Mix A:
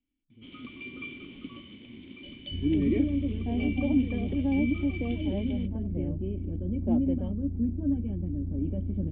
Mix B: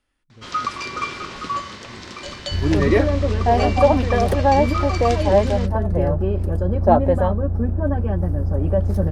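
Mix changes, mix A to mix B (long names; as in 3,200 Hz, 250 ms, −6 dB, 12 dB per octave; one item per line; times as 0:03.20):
first sound: add high-frequency loss of the air 160 metres
master: remove formant resonators in series i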